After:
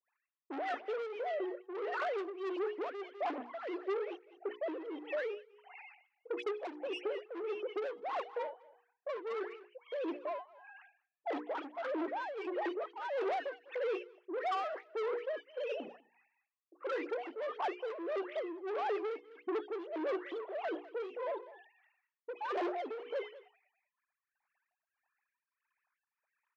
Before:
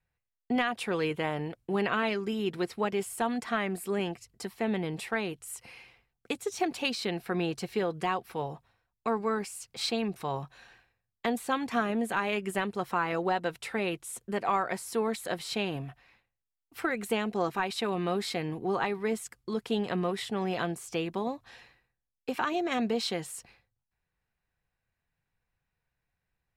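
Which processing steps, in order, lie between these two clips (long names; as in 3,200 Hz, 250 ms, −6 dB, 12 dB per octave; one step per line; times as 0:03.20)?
three sine waves on the formant tracks
harmonic generator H 8 −26 dB, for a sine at −12.5 dBFS
in parallel at −1 dB: brickwall limiter −22.5 dBFS, peak gain reduction 10 dB
on the sum: tilt shelving filter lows +8 dB
mains-hum notches 60/120/180/240/300/360/420/480 Hz
all-pass dispersion highs, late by 119 ms, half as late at 1,700 Hz
soft clipping −24 dBFS, distortion −7 dB
high-pass filter 330 Hz 24 dB per octave
on a send: single-tap delay 200 ms −19.5 dB
on the sum: shaped tremolo triangle 1.6 Hz, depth 80%
multiband upward and downward compressor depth 40%
level −5 dB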